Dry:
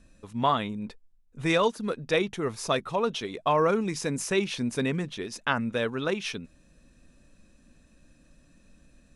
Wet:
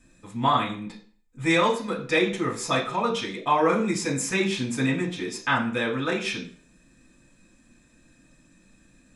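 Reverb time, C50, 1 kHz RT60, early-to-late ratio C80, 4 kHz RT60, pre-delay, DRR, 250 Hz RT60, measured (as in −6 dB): 0.45 s, 9.5 dB, 0.45 s, 13.5 dB, 0.40 s, 3 ms, −4.5 dB, 0.45 s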